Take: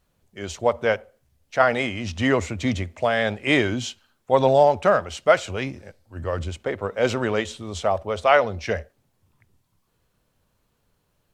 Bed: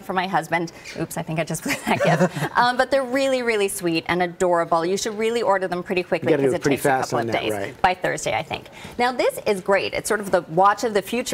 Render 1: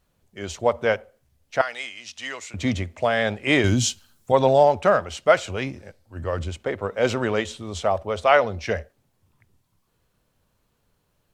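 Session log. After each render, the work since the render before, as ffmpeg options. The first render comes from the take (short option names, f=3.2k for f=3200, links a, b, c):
-filter_complex "[0:a]asettb=1/sr,asplit=3[a][b][c];[a]atrim=end=1.614[d];[b]atrim=start=1.61:end=2.54,asetpts=PTS-STARTPTS,afade=t=in:d=0.004:c=qsin,afade=t=out:st=0.926:d=0.004:c=qsin,bandpass=f=7k:t=q:w=0.51[e];[c]atrim=start=2.536[f];[d][e]acrossfade=d=0.004:c1=hsin:c2=qsin[g];[g][f]acrossfade=d=0.004:c1=qsin:c2=hsin,asettb=1/sr,asplit=3[h][i][j];[h]atrim=end=3.644[k];[i]atrim=start=3.64:end=4.32,asetpts=PTS-STARTPTS,afade=t=in:d=0.004:c=qsin,afade=t=out:st=0.676:d=0.004:c=qsin,bass=f=250:g=10,treble=f=4k:g=13[l];[j]atrim=start=4.316[m];[k][l]acrossfade=d=0.004:c1=hsin:c2=qsin[n];[n][m]acrossfade=d=0.004:c1=qsin:c2=hsin"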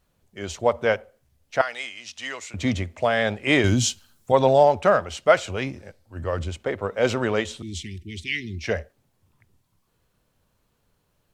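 -filter_complex "[0:a]asettb=1/sr,asplit=3[a][b][c];[a]atrim=end=7.624[d];[b]atrim=start=7.62:end=8.64,asetpts=PTS-STARTPTS,afade=t=in:d=0.004:c=qsin,afade=t=out:st=1.016:d=0.004:c=qsin,asuperstop=centerf=840:order=20:qfactor=0.55[e];[c]atrim=start=8.636[f];[d][e]acrossfade=d=0.004:c1=hsin:c2=qsin[g];[g][f]acrossfade=d=0.004:c1=qsin:c2=hsin"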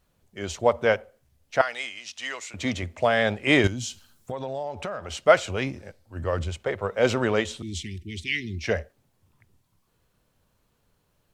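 -filter_complex "[0:a]asettb=1/sr,asplit=3[a][b][c];[a]atrim=end=1.994[d];[b]atrim=start=1.99:end=2.83,asetpts=PTS-STARTPTS,afade=t=in:d=0.004:c=qsin,afade=t=out:st=0.836:d=0.004:c=qsin,lowshelf=f=250:g=-9[e];[c]atrim=start=2.826[f];[d][e]acrossfade=d=0.004:c1=hsin:c2=qsin[g];[g][f]acrossfade=d=0.004:c1=qsin:c2=hsin,asettb=1/sr,asplit=3[h][i][j];[h]atrim=end=3.674[k];[i]atrim=start=3.67:end=5.12,asetpts=PTS-STARTPTS,afade=t=in:d=0.004:c=qsin,afade=t=out:st=1.446:d=0.004:c=qsin,acompressor=threshold=-29dB:ratio=6:attack=3.2:release=140:knee=1:detection=peak[l];[j]atrim=start=5.116[m];[k][l]acrossfade=d=0.004:c1=hsin:c2=qsin[n];[n][m]acrossfade=d=0.004:c1=qsin:c2=hsin,asettb=1/sr,asplit=3[o][p][q];[o]atrim=end=6.444[r];[p]atrim=start=6.44:end=6.97,asetpts=PTS-STARTPTS,afade=t=in:d=0.004:c=qsin,afade=t=out:st=0.526:d=0.004:c=qsin,equalizer=f=270:t=o:w=0.55:g=-8.5[s];[q]atrim=start=6.966[t];[r][s]acrossfade=d=0.004:c1=hsin:c2=qsin[u];[u][t]acrossfade=d=0.004:c1=qsin:c2=hsin"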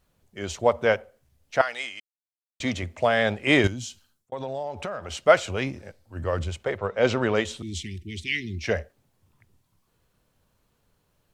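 -filter_complex "[0:a]asettb=1/sr,asplit=3[a][b][c];[a]atrim=end=6.784[d];[b]atrim=start=6.78:end=7.35,asetpts=PTS-STARTPTS,afade=t=in:d=0.004:c=qsin,afade=t=out:st=0.566:d=0.004:c=qsin,lowpass=5.9k[e];[c]atrim=start=7.346[f];[d][e]acrossfade=d=0.004:c1=hsin:c2=qsin[g];[g][f]acrossfade=d=0.004:c1=qsin:c2=hsin,asplit=4[h][i][j][k];[h]atrim=end=2,asetpts=PTS-STARTPTS,afade=t=out:st=1.996:d=0.004:c=hsin[l];[i]atrim=start=2:end=2.6,asetpts=PTS-STARTPTS,volume=0[m];[j]atrim=start=2.6:end=4.32,asetpts=PTS-STARTPTS,afade=t=in:d=0.004:c=hsin,afade=t=out:st=1.03:d=0.69[n];[k]atrim=start=4.32,asetpts=PTS-STARTPTS,afade=t=in:d=0.004:c=hsin[o];[l][m][n][o]concat=n=4:v=0:a=1"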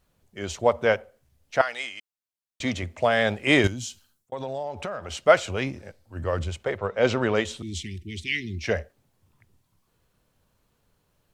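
-filter_complex "[0:a]asettb=1/sr,asplit=3[a][b][c];[a]atrim=end=3.114[d];[b]atrim=start=3.11:end=4.58,asetpts=PTS-STARTPTS,afade=t=in:d=0.004:c=qsin,afade=t=out:st=1.466:d=0.004:c=qsin,highshelf=f=7.6k:g=5.5[e];[c]atrim=start=4.576[f];[d][e]acrossfade=d=0.004:c1=hsin:c2=qsin[g];[g][f]acrossfade=d=0.004:c1=qsin:c2=hsin"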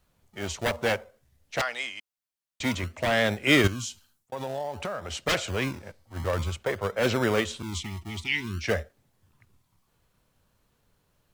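-filter_complex "[0:a]acrossover=split=370|1900[a][b][c];[a]acrusher=samples=33:mix=1:aa=0.000001:lfo=1:lforange=19.8:lforate=0.53[d];[b]aeval=exprs='0.0891*(abs(mod(val(0)/0.0891+3,4)-2)-1)':c=same[e];[d][e][c]amix=inputs=3:normalize=0"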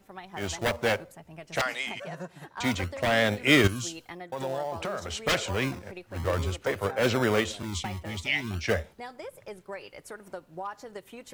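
-filter_complex "[1:a]volume=-21dB[a];[0:a][a]amix=inputs=2:normalize=0"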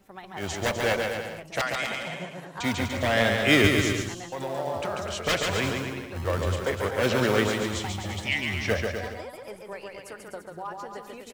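-af "aecho=1:1:140|252|341.6|413.3|470.6:0.631|0.398|0.251|0.158|0.1"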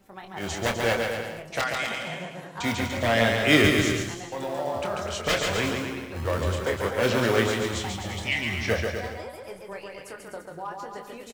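-filter_complex "[0:a]asplit=2[a][b];[b]adelay=26,volume=-7dB[c];[a][c]amix=inputs=2:normalize=0,asplit=2[d][e];[e]adelay=548.1,volume=-27dB,highshelf=f=4k:g=-12.3[f];[d][f]amix=inputs=2:normalize=0"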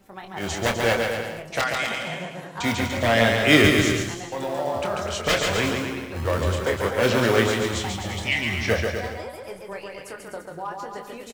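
-af "volume=3dB"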